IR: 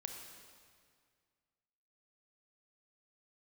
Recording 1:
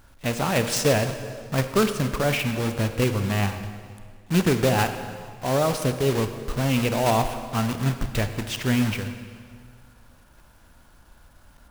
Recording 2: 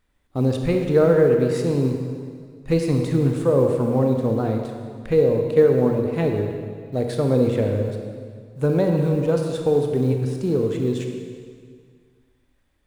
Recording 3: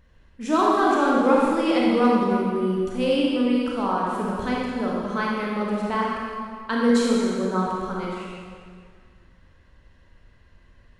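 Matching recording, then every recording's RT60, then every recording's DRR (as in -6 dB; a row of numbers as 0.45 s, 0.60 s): 2; 2.0 s, 2.0 s, 2.0 s; 8.0 dB, 3.0 dB, -4.5 dB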